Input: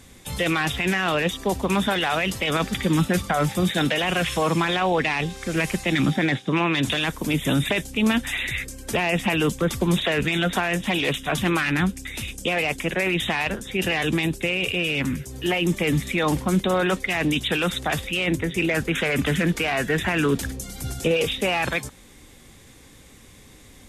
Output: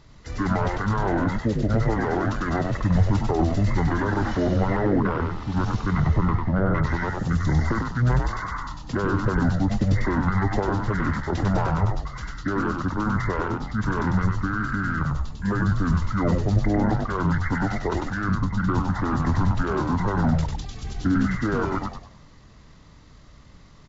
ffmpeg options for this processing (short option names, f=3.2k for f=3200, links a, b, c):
-filter_complex "[0:a]highshelf=f=2.1k:g=-9,asetrate=24750,aresample=44100,atempo=1.7818,asplit=6[a][b][c][d][e][f];[b]adelay=98,afreqshift=-77,volume=-3dB[g];[c]adelay=196,afreqshift=-154,volume=-11.9dB[h];[d]adelay=294,afreqshift=-231,volume=-20.7dB[i];[e]adelay=392,afreqshift=-308,volume=-29.6dB[j];[f]adelay=490,afreqshift=-385,volume=-38.5dB[k];[a][g][h][i][j][k]amix=inputs=6:normalize=0"